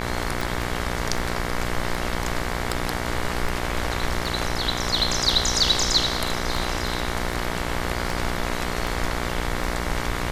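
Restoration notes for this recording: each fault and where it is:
buzz 60 Hz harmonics 38 -29 dBFS
tick 78 rpm

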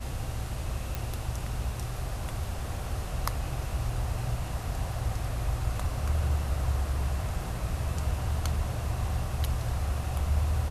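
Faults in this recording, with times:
0.95 s: pop

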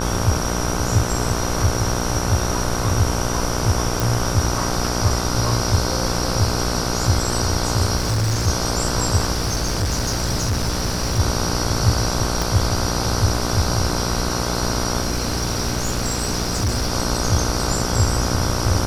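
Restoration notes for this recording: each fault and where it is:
buzz 60 Hz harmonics 26 -24 dBFS
4.00 s: pop
7.96–8.48 s: clipped -16.5 dBFS
9.32–11.20 s: clipped -17 dBFS
12.42 s: pop
15.00–16.92 s: clipped -16.5 dBFS

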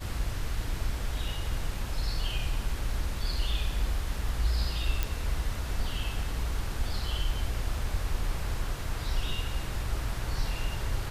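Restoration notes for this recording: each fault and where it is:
5.03 s: pop

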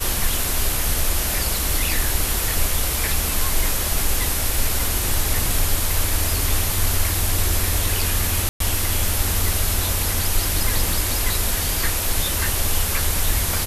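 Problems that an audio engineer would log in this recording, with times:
8.49–8.60 s: dropout 113 ms

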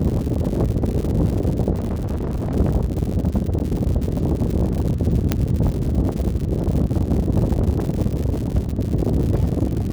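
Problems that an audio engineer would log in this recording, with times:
crackle 150 per s -26 dBFS
1.72–2.56 s: clipped -20 dBFS
3.59–3.60 s: dropout 9.6 ms
5.32 s: pop -4 dBFS

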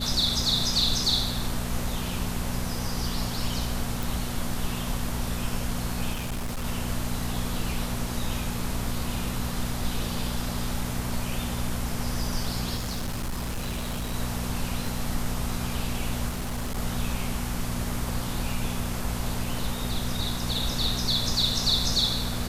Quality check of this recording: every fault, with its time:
hum 60 Hz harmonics 4 -33 dBFS
4.03 s: pop
6.13–6.64 s: clipped -27 dBFS
12.75–14.14 s: clipped -26.5 dBFS
14.87 s: dropout 2.9 ms
16.28–16.79 s: clipped -26.5 dBFS

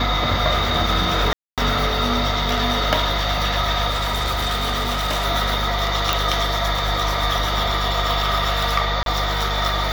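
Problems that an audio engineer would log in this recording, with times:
hum 50 Hz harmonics 4 -25 dBFS
1.33–1.58 s: dropout 247 ms
3.90–5.26 s: clipped -18 dBFS
6.13 s: pop
9.03–9.06 s: dropout 32 ms

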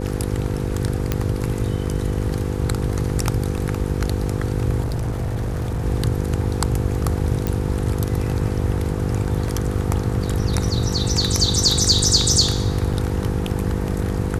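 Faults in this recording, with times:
buzz 50 Hz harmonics 10 -25 dBFS
1.12 s: pop -6 dBFS
4.80–5.84 s: clipped -20 dBFS
7.47 s: pop
9.48 s: dropout 2.5 ms
12.93–12.94 s: dropout 5.3 ms

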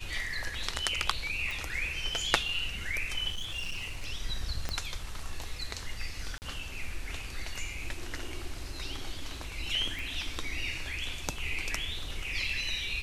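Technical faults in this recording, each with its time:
1.51 s: pop
3.30–4.08 s: clipped -31.5 dBFS
4.69 s: pop -18 dBFS
6.38–6.42 s: dropout 39 ms
9.99 s: pop

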